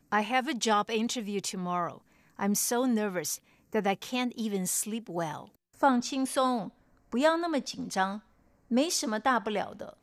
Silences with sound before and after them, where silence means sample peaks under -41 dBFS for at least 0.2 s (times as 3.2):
1.98–2.39
3.36–3.73
5.47–5.81
6.69–7.12
8.19–8.71